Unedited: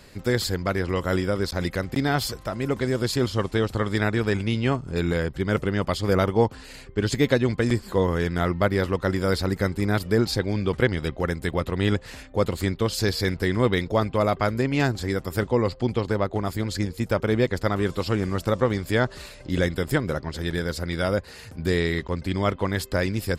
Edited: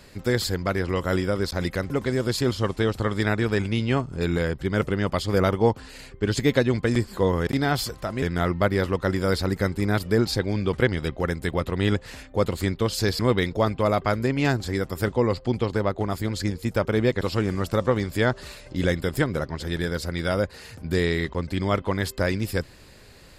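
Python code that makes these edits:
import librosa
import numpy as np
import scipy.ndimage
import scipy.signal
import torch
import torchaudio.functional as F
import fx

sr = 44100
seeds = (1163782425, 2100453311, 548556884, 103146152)

y = fx.edit(x, sr, fx.move(start_s=1.9, length_s=0.75, to_s=8.22),
    fx.cut(start_s=13.19, length_s=0.35),
    fx.cut(start_s=17.56, length_s=0.39), tone=tone)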